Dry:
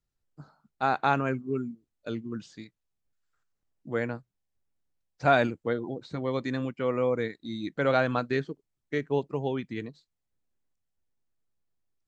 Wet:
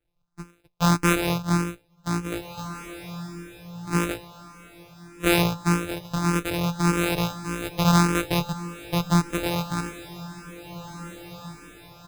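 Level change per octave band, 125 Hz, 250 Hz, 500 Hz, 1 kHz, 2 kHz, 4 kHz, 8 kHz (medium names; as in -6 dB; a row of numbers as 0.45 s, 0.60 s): +10.5 dB, +8.0 dB, -1.5 dB, +2.5 dB, +4.0 dB, +12.0 dB, no reading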